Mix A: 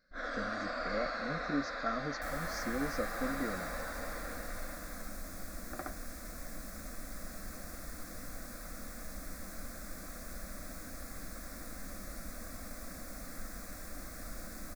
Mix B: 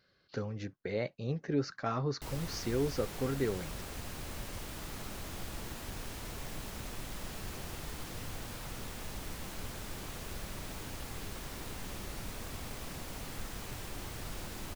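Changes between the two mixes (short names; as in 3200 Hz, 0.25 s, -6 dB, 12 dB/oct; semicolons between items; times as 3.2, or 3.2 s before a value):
first sound: muted; master: remove fixed phaser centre 600 Hz, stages 8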